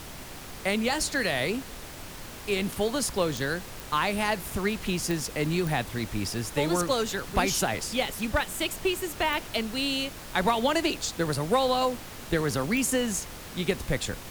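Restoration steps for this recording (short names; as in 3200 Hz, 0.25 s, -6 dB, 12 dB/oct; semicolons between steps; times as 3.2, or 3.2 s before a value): clip repair -14.5 dBFS; de-click; noise print and reduce 30 dB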